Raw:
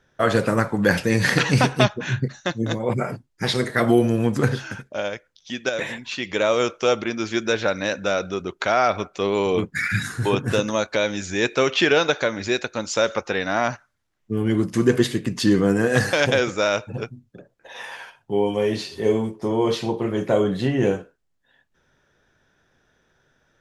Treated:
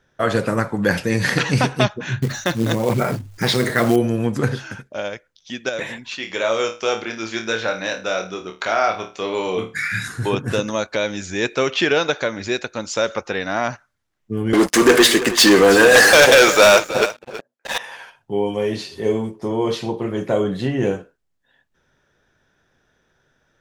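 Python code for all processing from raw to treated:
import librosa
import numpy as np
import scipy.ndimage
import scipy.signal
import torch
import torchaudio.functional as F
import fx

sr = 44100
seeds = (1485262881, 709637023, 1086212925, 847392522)

y = fx.chain(x, sr, fx.quant_float(bits=2),
    fx.hum_notches(base_hz=50, count=2),
    fx.env_flatten(amount_pct=50), at=(2.22, 3.96))
y = fx.chain(y, sr, fx.low_shelf(hz=300.0, db=-9.0),
    fx.room_flutter(wall_m=4.6, rt60_s=0.28), at=(6.17, 10.08))
y = fx.chain(y, sr, fx.highpass(hz=520.0, slope=12),
    fx.leveller(passes=5),
    fx.echo_single(ms=325, db=-14.0), at=(14.53, 17.78))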